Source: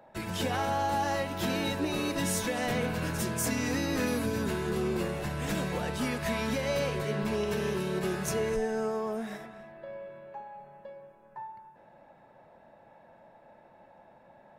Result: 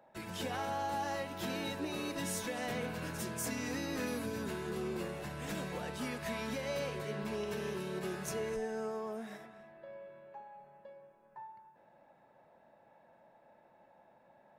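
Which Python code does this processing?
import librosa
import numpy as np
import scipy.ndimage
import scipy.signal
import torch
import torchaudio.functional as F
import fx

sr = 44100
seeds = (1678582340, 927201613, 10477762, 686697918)

y = fx.low_shelf(x, sr, hz=90.0, db=-8.5)
y = y * 10.0 ** (-7.0 / 20.0)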